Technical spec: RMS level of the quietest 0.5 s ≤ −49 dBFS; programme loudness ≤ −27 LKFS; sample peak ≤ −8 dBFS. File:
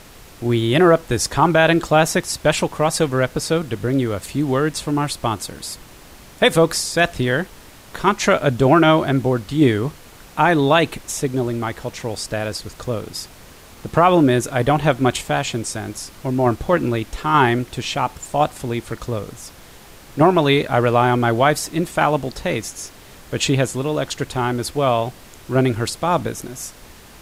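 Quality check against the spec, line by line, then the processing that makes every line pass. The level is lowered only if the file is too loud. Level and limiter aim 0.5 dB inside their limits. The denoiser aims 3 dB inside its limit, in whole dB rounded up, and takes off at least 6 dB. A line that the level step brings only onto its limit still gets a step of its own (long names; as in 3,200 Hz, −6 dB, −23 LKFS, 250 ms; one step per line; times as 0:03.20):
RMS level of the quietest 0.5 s −43 dBFS: out of spec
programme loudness −19.0 LKFS: out of spec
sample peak −3.0 dBFS: out of spec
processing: level −8.5 dB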